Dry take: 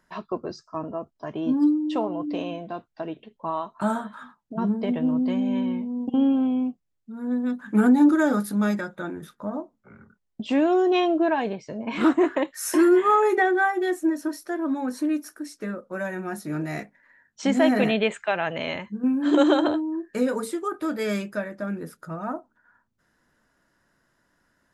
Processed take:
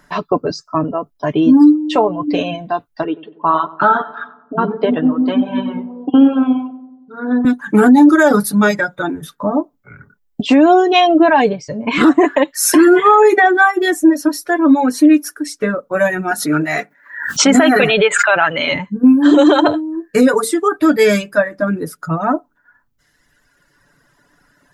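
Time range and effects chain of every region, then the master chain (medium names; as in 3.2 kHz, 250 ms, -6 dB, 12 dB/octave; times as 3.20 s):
3.04–7.45 s: cabinet simulation 190–3700 Hz, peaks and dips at 210 Hz -9 dB, 570 Hz -3 dB, 1.4 kHz +9 dB, 2.2 kHz -9 dB + filtered feedback delay 93 ms, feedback 61%, low-pass 1.2 kHz, level -7 dB
16.31–18.72 s: high-pass 280 Hz 6 dB/octave + peaking EQ 1.4 kHz +9 dB 0.34 oct + swell ahead of each attack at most 71 dB/s
whole clip: reverb removal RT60 1.9 s; comb 6.9 ms, depth 46%; loudness maximiser +16 dB; trim -1 dB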